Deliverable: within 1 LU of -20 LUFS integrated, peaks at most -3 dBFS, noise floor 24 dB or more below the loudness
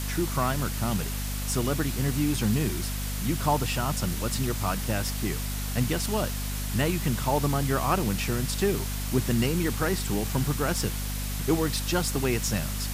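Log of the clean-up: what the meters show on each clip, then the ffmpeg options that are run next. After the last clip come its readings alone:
hum 50 Hz; highest harmonic 250 Hz; hum level -29 dBFS; noise floor -31 dBFS; noise floor target -52 dBFS; loudness -27.5 LUFS; peak level -11.5 dBFS; loudness target -20.0 LUFS
-> -af "bandreject=f=50:t=h:w=4,bandreject=f=100:t=h:w=4,bandreject=f=150:t=h:w=4,bandreject=f=200:t=h:w=4,bandreject=f=250:t=h:w=4"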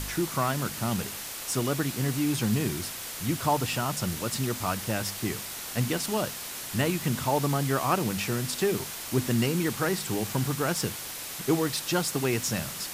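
hum not found; noise floor -38 dBFS; noise floor target -53 dBFS
-> -af "afftdn=nr=15:nf=-38"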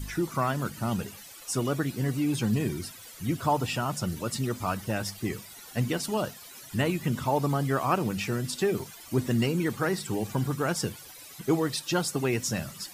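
noise floor -47 dBFS; noise floor target -54 dBFS
-> -af "afftdn=nr=7:nf=-47"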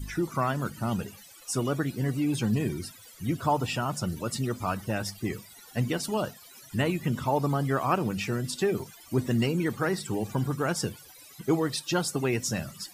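noise floor -51 dBFS; noise floor target -54 dBFS
-> -af "afftdn=nr=6:nf=-51"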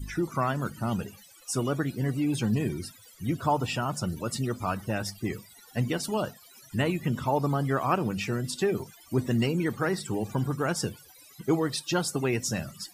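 noise floor -54 dBFS; loudness -29.5 LUFS; peak level -11.5 dBFS; loudness target -20.0 LUFS
-> -af "volume=2.99,alimiter=limit=0.708:level=0:latency=1"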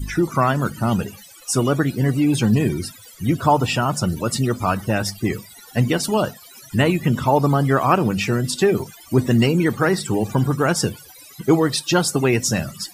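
loudness -20.0 LUFS; peak level -3.0 dBFS; noise floor -44 dBFS

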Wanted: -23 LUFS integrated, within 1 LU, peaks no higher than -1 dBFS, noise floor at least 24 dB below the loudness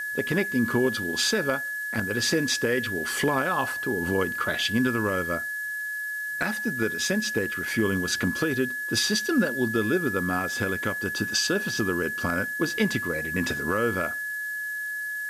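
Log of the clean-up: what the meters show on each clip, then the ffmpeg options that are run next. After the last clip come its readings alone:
steady tone 1.7 kHz; tone level -29 dBFS; noise floor -32 dBFS; noise floor target -50 dBFS; loudness -26.0 LUFS; peak level -12.5 dBFS; loudness target -23.0 LUFS
-> -af "bandreject=f=1700:w=30"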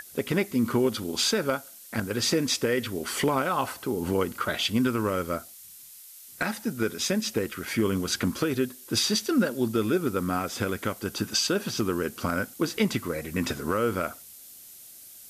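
steady tone not found; noise floor -48 dBFS; noise floor target -52 dBFS
-> -af "afftdn=nr=6:nf=-48"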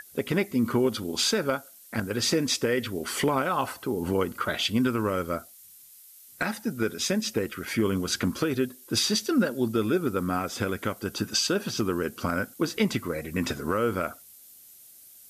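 noise floor -51 dBFS; noise floor target -52 dBFS
-> -af "afftdn=nr=6:nf=-51"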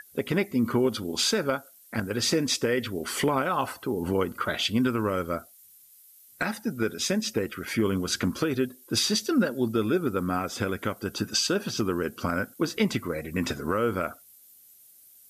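noise floor -55 dBFS; loudness -27.5 LUFS; peak level -13.0 dBFS; loudness target -23.0 LUFS
-> -af "volume=1.68"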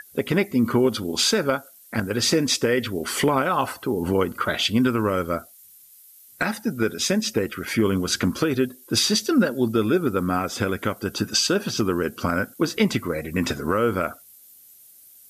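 loudness -23.0 LUFS; peak level -8.5 dBFS; noise floor -50 dBFS

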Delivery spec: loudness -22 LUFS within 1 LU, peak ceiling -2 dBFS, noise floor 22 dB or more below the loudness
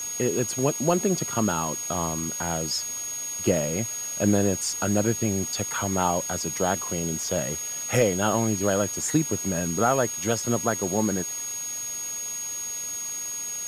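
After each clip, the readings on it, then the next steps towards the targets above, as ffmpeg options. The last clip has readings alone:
steady tone 6.6 kHz; tone level -30 dBFS; noise floor -33 dBFS; noise floor target -48 dBFS; loudness -25.5 LUFS; peak level -9.0 dBFS; loudness target -22.0 LUFS
-> -af "bandreject=f=6600:w=30"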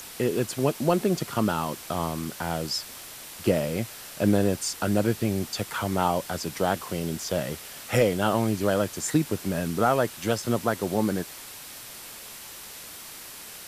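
steady tone not found; noise floor -42 dBFS; noise floor target -49 dBFS
-> -af "afftdn=nr=7:nf=-42"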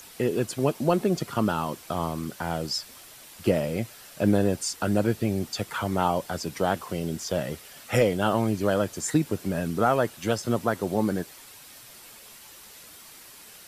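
noise floor -48 dBFS; noise floor target -49 dBFS
-> -af "afftdn=nr=6:nf=-48"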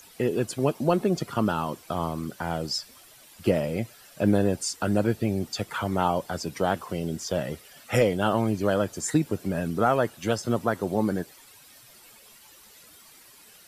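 noise floor -52 dBFS; loudness -27.0 LUFS; peak level -9.5 dBFS; loudness target -22.0 LUFS
-> -af "volume=1.78"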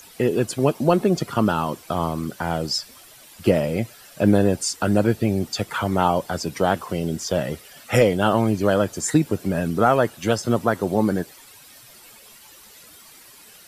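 loudness -22.0 LUFS; peak level -4.5 dBFS; noise floor -47 dBFS

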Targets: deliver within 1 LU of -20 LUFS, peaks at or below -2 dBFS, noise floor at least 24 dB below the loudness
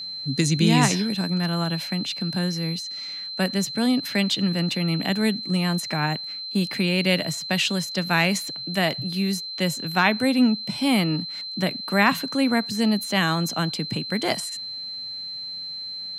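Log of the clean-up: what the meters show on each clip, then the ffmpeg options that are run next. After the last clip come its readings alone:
steady tone 4.1 kHz; tone level -31 dBFS; loudness -23.5 LUFS; peak level -5.0 dBFS; loudness target -20.0 LUFS
-> -af "bandreject=f=4100:w=30"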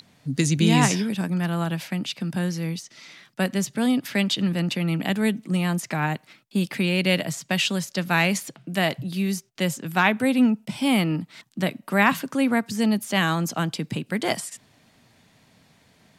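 steady tone not found; loudness -24.0 LUFS; peak level -5.0 dBFS; loudness target -20.0 LUFS
-> -af "volume=1.58,alimiter=limit=0.794:level=0:latency=1"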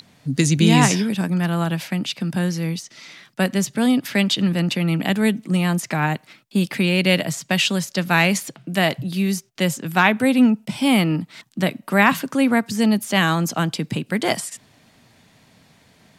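loudness -20.0 LUFS; peak level -2.0 dBFS; noise floor -56 dBFS

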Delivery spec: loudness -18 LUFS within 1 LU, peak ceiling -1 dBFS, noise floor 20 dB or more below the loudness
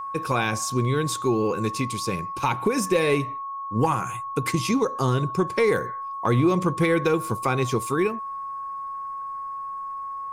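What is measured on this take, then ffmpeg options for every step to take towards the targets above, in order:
steady tone 1.1 kHz; tone level -30 dBFS; loudness -25.0 LUFS; peak level -10.5 dBFS; loudness target -18.0 LUFS
-> -af "bandreject=f=1100:w=30"
-af "volume=2.24"

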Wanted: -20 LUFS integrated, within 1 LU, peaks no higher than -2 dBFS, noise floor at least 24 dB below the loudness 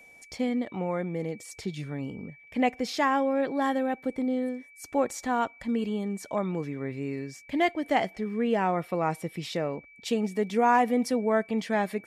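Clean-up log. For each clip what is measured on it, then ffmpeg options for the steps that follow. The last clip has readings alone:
steady tone 2.3 kHz; tone level -51 dBFS; loudness -29.0 LUFS; peak level -11.5 dBFS; loudness target -20.0 LUFS
-> -af "bandreject=f=2300:w=30"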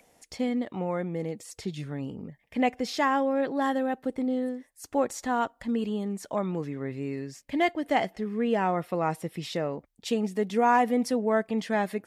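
steady tone not found; loudness -29.0 LUFS; peak level -11.5 dBFS; loudness target -20.0 LUFS
-> -af "volume=2.82"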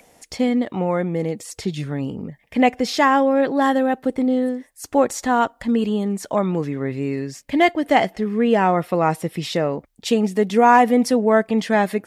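loudness -20.0 LUFS; peak level -2.5 dBFS; noise floor -59 dBFS

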